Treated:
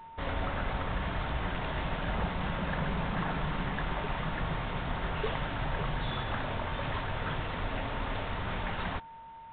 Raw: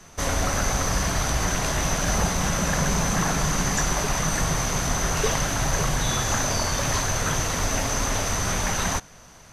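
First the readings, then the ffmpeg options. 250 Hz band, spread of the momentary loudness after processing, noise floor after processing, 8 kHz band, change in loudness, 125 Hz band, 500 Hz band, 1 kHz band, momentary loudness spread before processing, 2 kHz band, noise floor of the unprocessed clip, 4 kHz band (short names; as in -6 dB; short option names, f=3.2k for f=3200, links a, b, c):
-8.5 dB, 3 LU, -48 dBFS, under -40 dB, -10.5 dB, -8.5 dB, -8.5 dB, -7.5 dB, 1 LU, -8.5 dB, -48 dBFS, -12.0 dB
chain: -af "aeval=exprs='val(0)+0.0141*sin(2*PI*910*n/s)':c=same,volume=-8.5dB" -ar 8000 -c:a adpcm_g726 -b:a 40k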